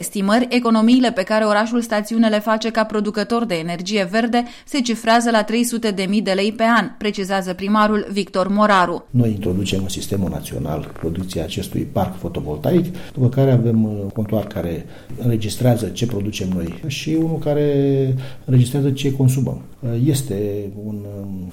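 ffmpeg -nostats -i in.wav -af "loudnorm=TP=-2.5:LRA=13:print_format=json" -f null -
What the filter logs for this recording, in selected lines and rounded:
"input_i" : "-19.1",
"input_tp" : "-4.8",
"input_lra" : "4.5",
"input_thresh" : "-29.3",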